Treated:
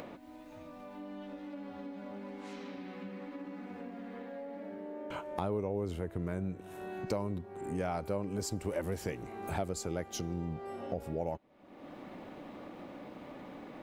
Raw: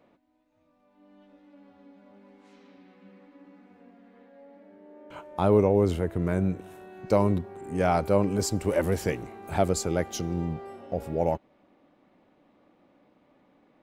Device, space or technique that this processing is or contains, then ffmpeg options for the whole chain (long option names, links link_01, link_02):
upward and downward compression: -af "acompressor=mode=upward:threshold=-43dB:ratio=2.5,acompressor=threshold=-44dB:ratio=3,volume=6dB"